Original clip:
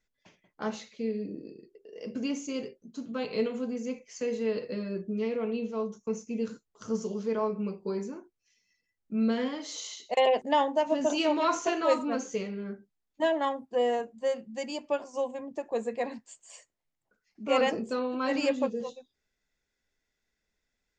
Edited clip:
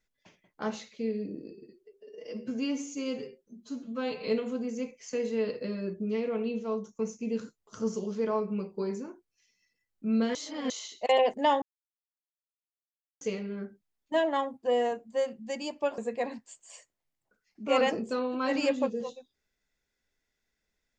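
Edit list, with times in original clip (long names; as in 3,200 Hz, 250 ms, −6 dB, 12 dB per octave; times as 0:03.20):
0:01.51–0:03.35: time-stretch 1.5×
0:09.43–0:09.78: reverse
0:10.70–0:12.29: silence
0:15.06–0:15.78: remove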